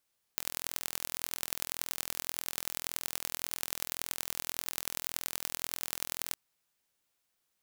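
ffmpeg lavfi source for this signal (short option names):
-f lavfi -i "aevalsrc='0.596*eq(mod(n,1055),0)*(0.5+0.5*eq(mod(n,4220),0))':d=5.96:s=44100"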